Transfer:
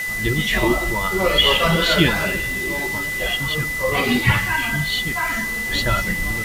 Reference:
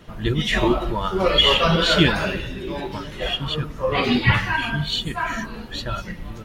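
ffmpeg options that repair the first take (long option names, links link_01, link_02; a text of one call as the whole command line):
ffmpeg -i in.wav -af "adeclick=threshold=4,bandreject=frequency=2000:width=30,afwtdn=0.02,asetnsamples=nb_out_samples=441:pad=0,asendcmd='5.66 volume volume -7dB',volume=0dB" out.wav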